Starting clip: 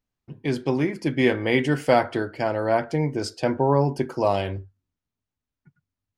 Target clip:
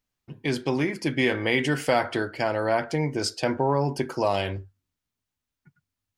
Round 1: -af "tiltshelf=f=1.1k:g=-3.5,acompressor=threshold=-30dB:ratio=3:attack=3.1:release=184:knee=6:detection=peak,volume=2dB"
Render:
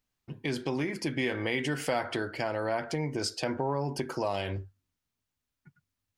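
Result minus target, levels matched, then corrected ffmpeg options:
compressor: peak gain reduction +7.5 dB
-af "tiltshelf=f=1.1k:g=-3.5,acompressor=threshold=-18.5dB:ratio=3:attack=3.1:release=184:knee=6:detection=peak,volume=2dB"

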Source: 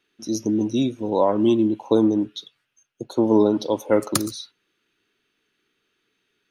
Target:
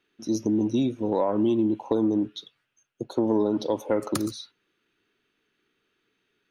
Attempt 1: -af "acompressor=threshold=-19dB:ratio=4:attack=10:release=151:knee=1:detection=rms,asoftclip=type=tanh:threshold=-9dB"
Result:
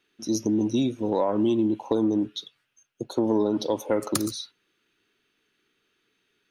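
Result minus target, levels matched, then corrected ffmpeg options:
8000 Hz band +5.5 dB
-af "acompressor=threshold=-19dB:ratio=4:attack=10:release=151:knee=1:detection=rms,highshelf=f=3.5k:g=-7.5,asoftclip=type=tanh:threshold=-9dB"

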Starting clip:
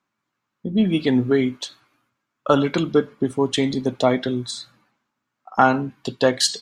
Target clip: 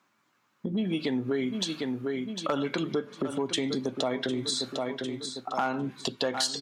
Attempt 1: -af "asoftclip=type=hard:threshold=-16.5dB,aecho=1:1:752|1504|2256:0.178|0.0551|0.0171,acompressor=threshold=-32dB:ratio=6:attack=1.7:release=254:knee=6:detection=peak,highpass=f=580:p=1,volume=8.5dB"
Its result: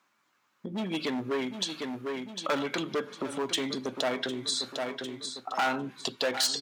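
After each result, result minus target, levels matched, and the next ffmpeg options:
hard clip: distortion +16 dB; 250 Hz band -3.0 dB
-af "asoftclip=type=hard:threshold=-6dB,aecho=1:1:752|1504|2256:0.178|0.0551|0.0171,acompressor=threshold=-32dB:ratio=6:attack=1.7:release=254:knee=6:detection=peak,highpass=f=580:p=1,volume=8.5dB"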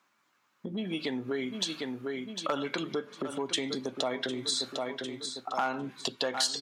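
250 Hz band -3.0 dB
-af "asoftclip=type=hard:threshold=-6dB,aecho=1:1:752|1504|2256:0.178|0.0551|0.0171,acompressor=threshold=-32dB:ratio=6:attack=1.7:release=254:knee=6:detection=peak,highpass=f=210:p=1,volume=8.5dB"

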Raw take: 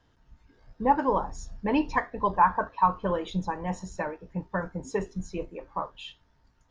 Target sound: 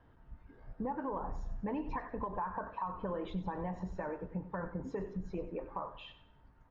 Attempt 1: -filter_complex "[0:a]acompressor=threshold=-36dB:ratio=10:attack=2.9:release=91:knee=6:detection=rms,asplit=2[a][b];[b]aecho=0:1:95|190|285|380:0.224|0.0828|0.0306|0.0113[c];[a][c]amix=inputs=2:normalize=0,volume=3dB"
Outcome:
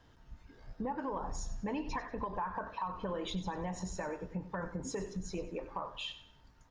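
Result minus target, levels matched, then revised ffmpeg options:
2000 Hz band +3.0 dB
-filter_complex "[0:a]acompressor=threshold=-36dB:ratio=10:attack=2.9:release=91:knee=6:detection=rms,lowpass=1.7k,asplit=2[a][b];[b]aecho=0:1:95|190|285|380:0.224|0.0828|0.0306|0.0113[c];[a][c]amix=inputs=2:normalize=0,volume=3dB"

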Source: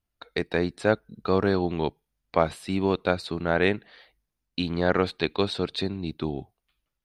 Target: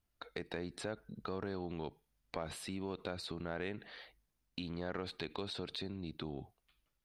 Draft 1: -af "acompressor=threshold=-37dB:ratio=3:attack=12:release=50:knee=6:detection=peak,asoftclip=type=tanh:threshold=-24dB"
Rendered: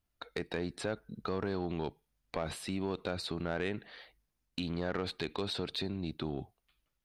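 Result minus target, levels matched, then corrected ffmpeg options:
compressor: peak gain reduction -6.5 dB
-af "acompressor=threshold=-47dB:ratio=3:attack=12:release=50:knee=6:detection=peak,asoftclip=type=tanh:threshold=-24dB"

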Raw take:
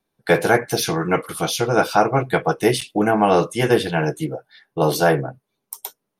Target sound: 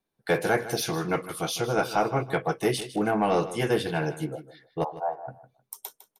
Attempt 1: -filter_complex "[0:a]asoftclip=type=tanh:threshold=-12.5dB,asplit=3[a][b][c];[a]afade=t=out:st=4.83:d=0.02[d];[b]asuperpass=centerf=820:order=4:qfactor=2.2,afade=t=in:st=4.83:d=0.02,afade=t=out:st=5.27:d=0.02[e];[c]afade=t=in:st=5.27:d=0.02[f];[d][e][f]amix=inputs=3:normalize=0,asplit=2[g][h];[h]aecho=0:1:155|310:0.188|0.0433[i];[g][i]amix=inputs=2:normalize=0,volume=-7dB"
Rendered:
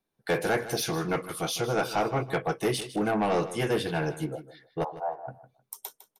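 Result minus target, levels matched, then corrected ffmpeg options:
soft clip: distortion +9 dB
-filter_complex "[0:a]asoftclip=type=tanh:threshold=-5.5dB,asplit=3[a][b][c];[a]afade=t=out:st=4.83:d=0.02[d];[b]asuperpass=centerf=820:order=4:qfactor=2.2,afade=t=in:st=4.83:d=0.02,afade=t=out:st=5.27:d=0.02[e];[c]afade=t=in:st=5.27:d=0.02[f];[d][e][f]amix=inputs=3:normalize=0,asplit=2[g][h];[h]aecho=0:1:155|310:0.188|0.0433[i];[g][i]amix=inputs=2:normalize=0,volume=-7dB"

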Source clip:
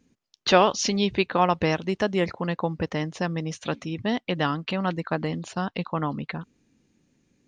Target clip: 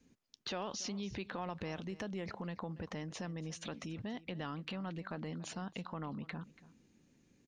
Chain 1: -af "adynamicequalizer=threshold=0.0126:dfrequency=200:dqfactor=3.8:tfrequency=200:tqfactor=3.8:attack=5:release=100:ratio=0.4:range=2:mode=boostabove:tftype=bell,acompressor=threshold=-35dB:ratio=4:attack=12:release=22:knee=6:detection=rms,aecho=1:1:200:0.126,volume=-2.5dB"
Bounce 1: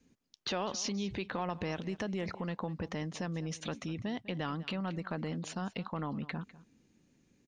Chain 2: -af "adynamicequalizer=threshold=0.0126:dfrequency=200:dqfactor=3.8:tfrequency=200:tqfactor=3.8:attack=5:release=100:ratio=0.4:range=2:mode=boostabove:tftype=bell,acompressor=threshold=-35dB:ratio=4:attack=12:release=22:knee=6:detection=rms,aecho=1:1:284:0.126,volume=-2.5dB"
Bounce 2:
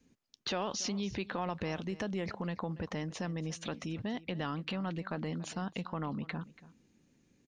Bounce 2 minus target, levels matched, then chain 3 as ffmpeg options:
compressor: peak gain reduction -5.5 dB
-af "adynamicequalizer=threshold=0.0126:dfrequency=200:dqfactor=3.8:tfrequency=200:tqfactor=3.8:attack=5:release=100:ratio=0.4:range=2:mode=boostabove:tftype=bell,acompressor=threshold=-42dB:ratio=4:attack=12:release=22:knee=6:detection=rms,aecho=1:1:284:0.126,volume=-2.5dB"

